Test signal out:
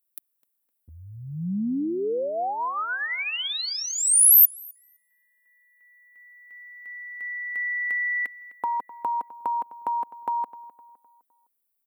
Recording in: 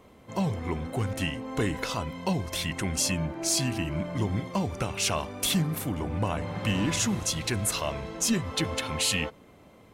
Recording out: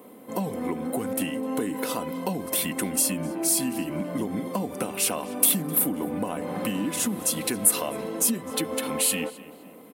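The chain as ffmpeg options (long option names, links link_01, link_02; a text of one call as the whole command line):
ffmpeg -i in.wav -filter_complex "[0:a]highpass=220,equalizer=frequency=290:width=0.46:gain=9.5,aecho=1:1:4:0.35,acompressor=threshold=-25dB:ratio=6,aexciter=amount=4.5:drive=8.5:freq=8700,asplit=2[link_01][link_02];[link_02]adelay=256,lowpass=frequency=3300:poles=1,volume=-17dB,asplit=2[link_03][link_04];[link_04]adelay=256,lowpass=frequency=3300:poles=1,volume=0.42,asplit=2[link_05][link_06];[link_06]adelay=256,lowpass=frequency=3300:poles=1,volume=0.42,asplit=2[link_07][link_08];[link_08]adelay=256,lowpass=frequency=3300:poles=1,volume=0.42[link_09];[link_01][link_03][link_05][link_07][link_09]amix=inputs=5:normalize=0" out.wav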